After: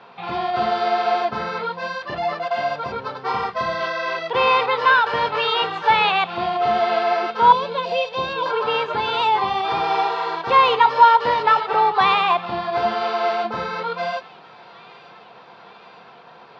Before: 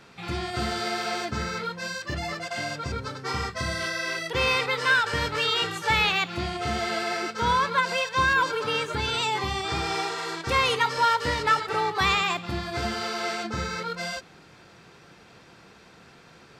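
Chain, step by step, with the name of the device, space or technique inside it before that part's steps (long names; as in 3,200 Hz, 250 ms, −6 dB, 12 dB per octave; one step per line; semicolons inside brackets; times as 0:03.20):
0:07.52–0:08.46: flat-topped bell 1,400 Hz −16 dB 1.3 octaves
kitchen radio (loudspeaker in its box 200–3,900 Hz, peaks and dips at 300 Hz −7 dB, 490 Hz +4 dB, 720 Hz +9 dB, 1,000 Hz +10 dB, 2,000 Hz −4 dB)
delay with a high-pass on its return 913 ms, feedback 67%, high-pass 1,800 Hz, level −20.5 dB
level +3.5 dB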